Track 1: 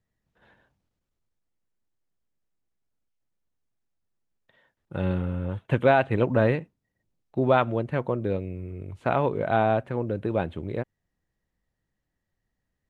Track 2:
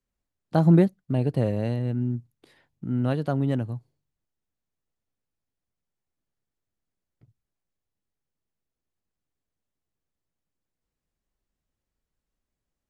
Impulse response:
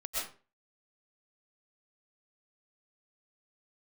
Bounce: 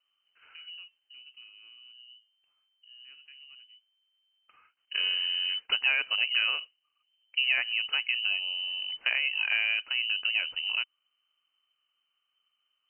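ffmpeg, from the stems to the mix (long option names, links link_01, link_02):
-filter_complex "[0:a]acompressor=threshold=-28dB:ratio=3,volume=2dB[link_01];[1:a]acompressor=threshold=-34dB:ratio=1.5,flanger=delay=8.7:depth=6.9:regen=-76:speed=1.1:shape=sinusoidal,volume=-18dB[link_02];[link_01][link_02]amix=inputs=2:normalize=0,lowpass=frequency=2600:width_type=q:width=0.5098,lowpass=frequency=2600:width_type=q:width=0.6013,lowpass=frequency=2600:width_type=q:width=0.9,lowpass=frequency=2600:width_type=q:width=2.563,afreqshift=-3100"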